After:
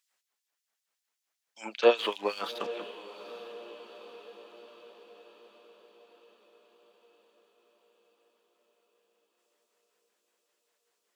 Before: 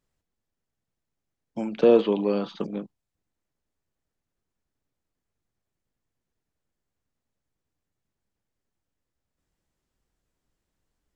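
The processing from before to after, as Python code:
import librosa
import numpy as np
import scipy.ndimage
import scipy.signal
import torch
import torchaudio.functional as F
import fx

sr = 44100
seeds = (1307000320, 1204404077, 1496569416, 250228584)

y = fx.backlash(x, sr, play_db=-46.5, at=(1.97, 2.75))
y = fx.filter_lfo_highpass(y, sr, shape='sine', hz=5.2, low_hz=750.0, high_hz=4000.0, q=0.75)
y = fx.echo_diffused(y, sr, ms=840, feedback_pct=58, wet_db=-14.0)
y = y * 10.0 ** (7.5 / 20.0)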